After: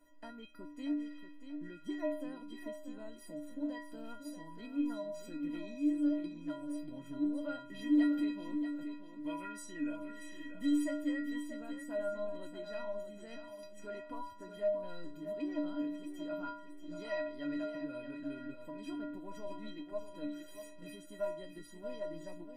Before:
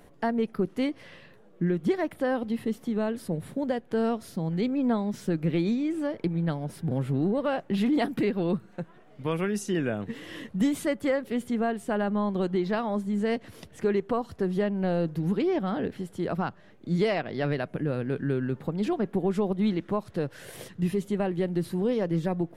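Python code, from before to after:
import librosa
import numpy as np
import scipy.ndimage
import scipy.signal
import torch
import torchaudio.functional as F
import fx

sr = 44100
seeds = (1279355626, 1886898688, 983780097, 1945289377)

y = fx.stiff_resonator(x, sr, f0_hz=290.0, decay_s=0.71, stiffness=0.03)
y = fx.echo_feedback(y, sr, ms=635, feedback_pct=31, wet_db=-9)
y = y * librosa.db_to_amplitude(7.0)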